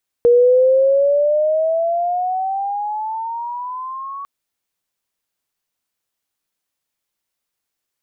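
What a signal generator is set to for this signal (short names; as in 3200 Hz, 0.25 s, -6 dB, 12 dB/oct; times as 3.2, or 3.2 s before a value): gliding synth tone sine, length 4.00 s, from 474 Hz, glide +15 st, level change -19 dB, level -7.5 dB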